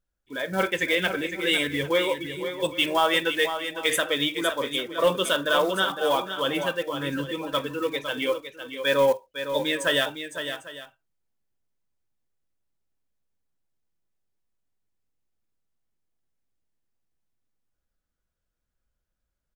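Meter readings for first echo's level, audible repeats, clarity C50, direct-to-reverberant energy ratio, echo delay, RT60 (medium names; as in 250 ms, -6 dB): -9.0 dB, 2, no reverb, no reverb, 508 ms, no reverb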